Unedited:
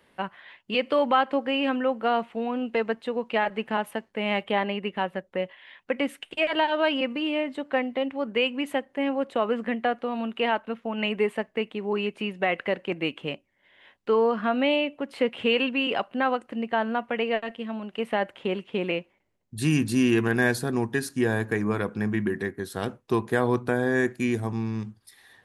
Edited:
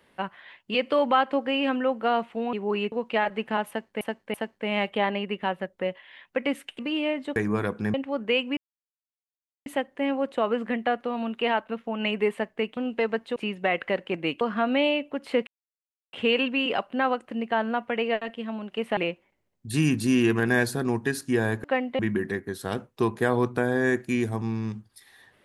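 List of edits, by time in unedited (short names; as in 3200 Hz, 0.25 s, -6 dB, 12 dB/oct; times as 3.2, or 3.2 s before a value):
2.53–3.12 swap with 11.75–12.14
3.88–4.21 loop, 3 plays
6.33–7.09 cut
7.66–8.01 swap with 21.52–22.1
8.64 insert silence 1.09 s
13.19–14.28 cut
15.34 insert silence 0.66 s
18.18–18.85 cut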